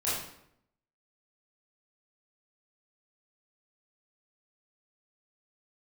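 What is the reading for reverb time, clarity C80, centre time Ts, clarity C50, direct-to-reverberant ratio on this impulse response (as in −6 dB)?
0.75 s, 4.5 dB, 63 ms, 0.0 dB, −10.0 dB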